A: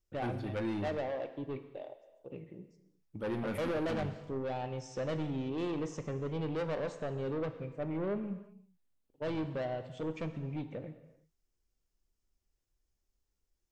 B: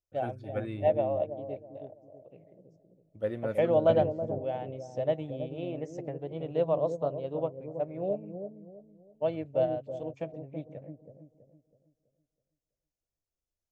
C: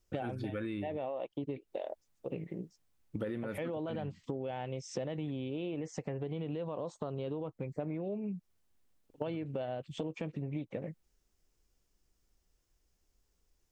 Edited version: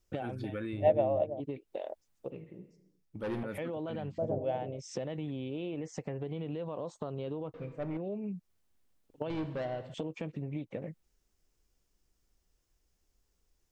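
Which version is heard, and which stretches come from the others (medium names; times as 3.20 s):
C
0.73–1.40 s: from B
2.30–3.43 s: from A
4.18–4.79 s: from B
7.54–7.97 s: from A
9.30–9.94 s: from A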